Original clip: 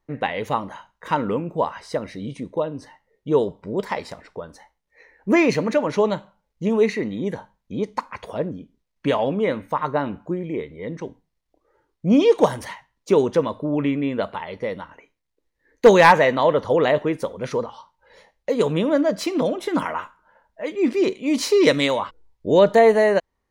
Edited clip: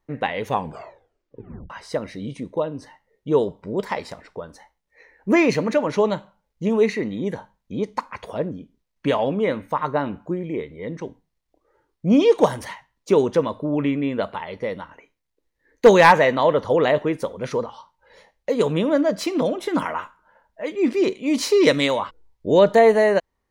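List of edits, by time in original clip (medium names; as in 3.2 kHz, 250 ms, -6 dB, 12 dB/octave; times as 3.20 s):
0.44 s: tape stop 1.26 s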